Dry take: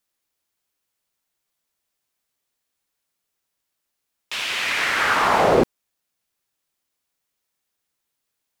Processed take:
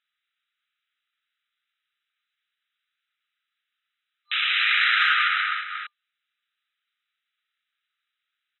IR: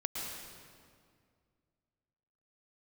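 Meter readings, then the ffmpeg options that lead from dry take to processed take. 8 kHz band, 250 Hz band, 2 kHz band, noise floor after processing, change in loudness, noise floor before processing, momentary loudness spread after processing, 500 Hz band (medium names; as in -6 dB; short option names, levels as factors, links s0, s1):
under -30 dB, under -40 dB, +2.0 dB, -84 dBFS, -1.0 dB, -79 dBFS, 12 LU, under -40 dB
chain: -filter_complex "[0:a]asplit=2[s0][s1];[s1]aecho=0:1:233:0.316[s2];[s0][s2]amix=inputs=2:normalize=0,acompressor=threshold=0.112:ratio=6,aeval=exprs='max(val(0),0)':c=same,afftfilt=real='re*between(b*sr/4096,1200,4000)':imag='im*between(b*sr/4096,1200,4000)':win_size=4096:overlap=0.75,acontrast=72,volume=1.33"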